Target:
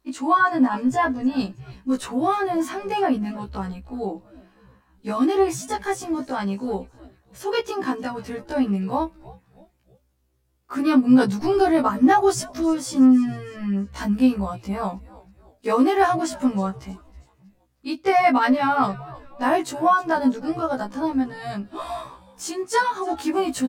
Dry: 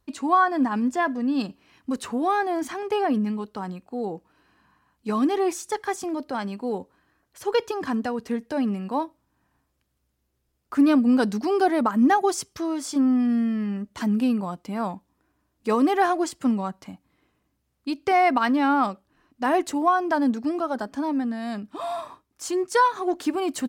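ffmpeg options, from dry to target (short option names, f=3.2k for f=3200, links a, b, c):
-filter_complex "[0:a]asplit=4[a][b][c][d];[b]adelay=318,afreqshift=-140,volume=-20dB[e];[c]adelay=636,afreqshift=-280,volume=-26.9dB[f];[d]adelay=954,afreqshift=-420,volume=-33.9dB[g];[a][e][f][g]amix=inputs=4:normalize=0,afftfilt=real='re*1.73*eq(mod(b,3),0)':imag='im*1.73*eq(mod(b,3),0)':win_size=2048:overlap=0.75,volume=4.5dB"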